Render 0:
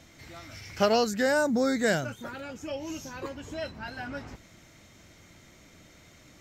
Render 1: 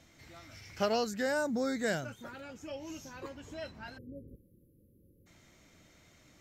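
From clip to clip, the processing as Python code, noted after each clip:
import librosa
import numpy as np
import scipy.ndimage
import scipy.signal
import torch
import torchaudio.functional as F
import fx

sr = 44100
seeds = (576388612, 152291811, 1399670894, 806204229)

y = fx.spec_erase(x, sr, start_s=3.98, length_s=1.29, low_hz=580.0, high_hz=9800.0)
y = F.gain(torch.from_numpy(y), -7.0).numpy()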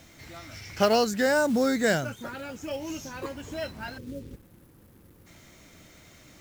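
y = fx.quant_companded(x, sr, bits=6)
y = F.gain(torch.from_numpy(y), 8.5).numpy()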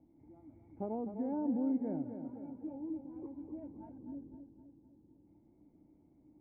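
y = fx.formant_cascade(x, sr, vowel='u')
y = fx.echo_feedback(y, sr, ms=256, feedback_pct=51, wet_db=-8.5)
y = F.gain(torch.from_numpy(y), -2.5).numpy()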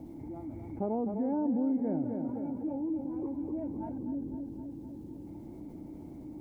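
y = fx.env_flatten(x, sr, amount_pct=50)
y = F.gain(torch.from_numpy(y), 2.5).numpy()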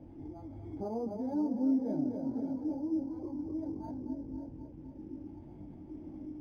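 y = x + 10.0 ** (-12.0 / 20.0) * np.pad(x, (int(546 * sr / 1000.0), 0))[:len(x)]
y = fx.chorus_voices(y, sr, voices=4, hz=0.51, base_ms=21, depth_ms=1.9, mix_pct=55)
y = np.interp(np.arange(len(y)), np.arange(len(y))[::8], y[::8])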